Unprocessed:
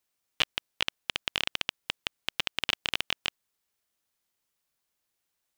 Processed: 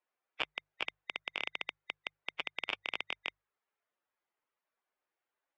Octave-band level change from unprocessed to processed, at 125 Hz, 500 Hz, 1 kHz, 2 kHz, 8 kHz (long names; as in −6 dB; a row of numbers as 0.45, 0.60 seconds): −15.0 dB, −4.5 dB, −5.0 dB, −5.0 dB, below −20 dB